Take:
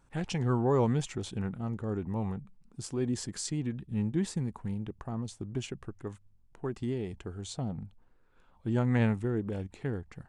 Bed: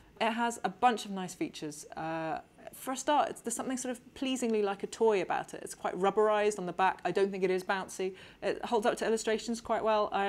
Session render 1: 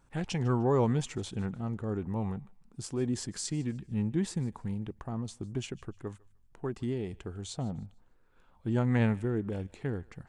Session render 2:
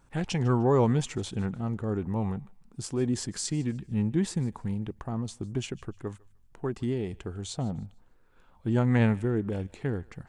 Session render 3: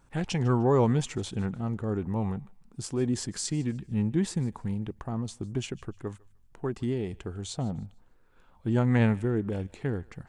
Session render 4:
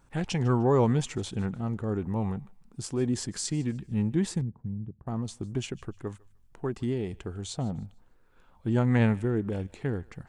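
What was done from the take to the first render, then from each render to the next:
thinning echo 0.151 s, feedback 32%, high-pass 870 Hz, level -21.5 dB
gain +3.5 dB
nothing audible
4.41–5.07 band-pass 130 Hz, Q 1.4

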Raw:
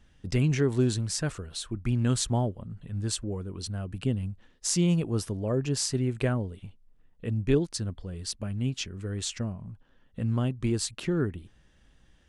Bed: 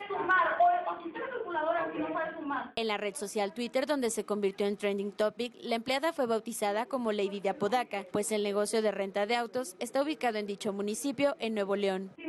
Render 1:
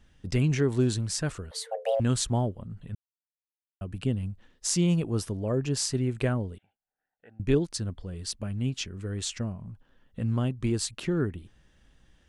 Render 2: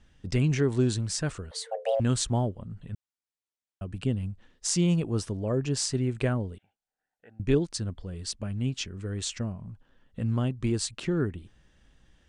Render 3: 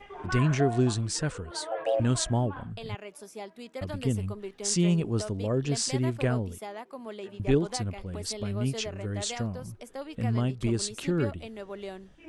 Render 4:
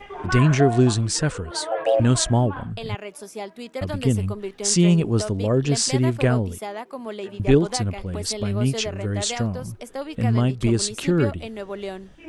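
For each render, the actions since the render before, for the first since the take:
1.51–2 frequency shift +430 Hz; 2.95–3.81 mute; 6.58–7.4 double band-pass 1100 Hz, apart 0.95 oct
steep low-pass 9700 Hz 48 dB/oct
add bed -9 dB
gain +7.5 dB

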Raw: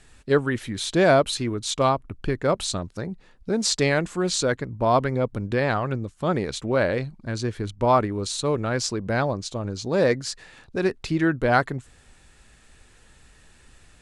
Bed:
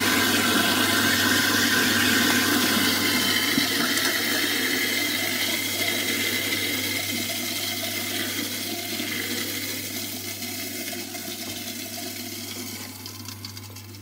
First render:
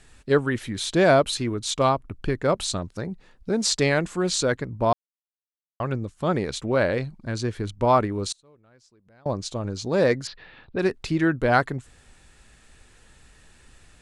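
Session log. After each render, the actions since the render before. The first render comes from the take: 4.93–5.8 mute; 8.32–9.26 flipped gate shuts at -25 dBFS, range -32 dB; 10.27–10.79 steep low-pass 4000 Hz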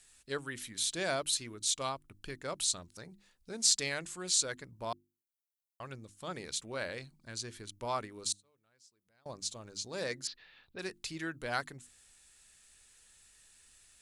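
pre-emphasis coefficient 0.9; notches 50/100/150/200/250/300/350 Hz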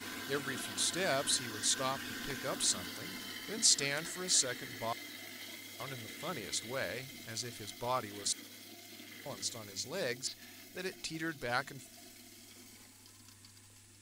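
add bed -22.5 dB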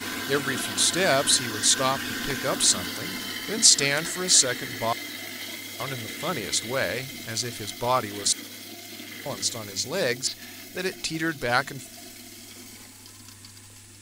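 gain +11.5 dB; limiter -1 dBFS, peak gain reduction 3 dB

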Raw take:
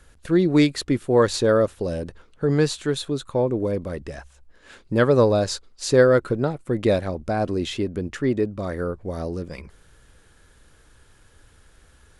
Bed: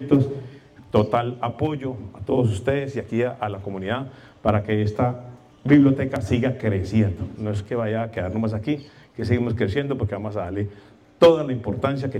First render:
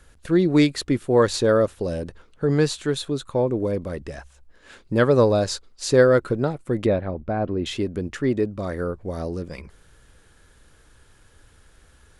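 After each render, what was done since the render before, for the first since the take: 6.86–7.66 air absorption 440 m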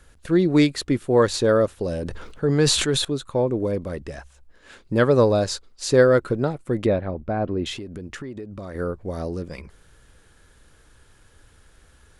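1.89–3.05 sustainer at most 39 dB/s; 7.74–8.75 compressor 16:1, threshold -30 dBFS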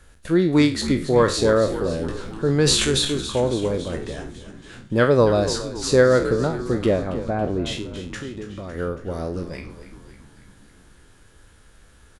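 spectral trails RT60 0.36 s; frequency-shifting echo 0.278 s, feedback 61%, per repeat -73 Hz, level -12.5 dB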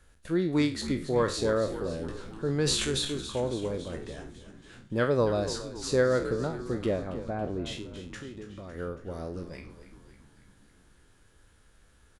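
gain -9 dB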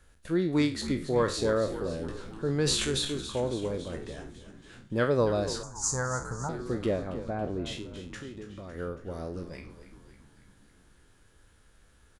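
5.63–6.49 EQ curve 130 Hz 0 dB, 190 Hz -5 dB, 350 Hz -16 dB, 570 Hz -11 dB, 860 Hz +9 dB, 1700 Hz -4 dB, 2600 Hz -20 dB, 3800 Hz -18 dB, 6600 Hz +14 dB, 12000 Hz -2 dB

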